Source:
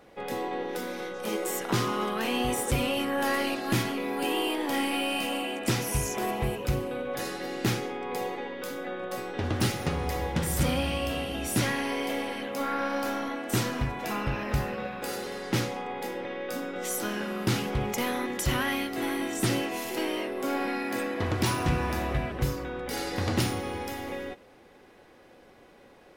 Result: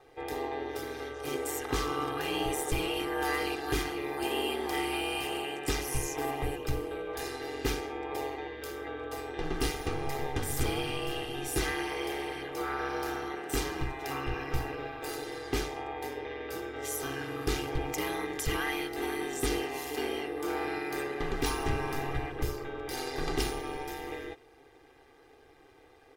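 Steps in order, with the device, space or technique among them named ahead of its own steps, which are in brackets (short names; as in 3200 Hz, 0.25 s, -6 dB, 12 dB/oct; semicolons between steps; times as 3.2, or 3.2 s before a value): ring-modulated robot voice (ring modulator 71 Hz; comb 2.5 ms, depth 87%); gain -3 dB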